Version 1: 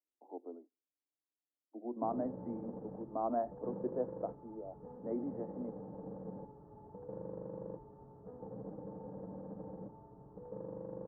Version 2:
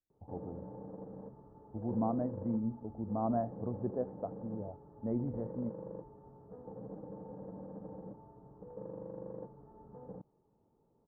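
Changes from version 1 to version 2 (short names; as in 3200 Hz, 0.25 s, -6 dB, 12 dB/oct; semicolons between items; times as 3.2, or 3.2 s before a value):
speech: remove steep high-pass 250 Hz 72 dB/oct; background: entry -1.75 s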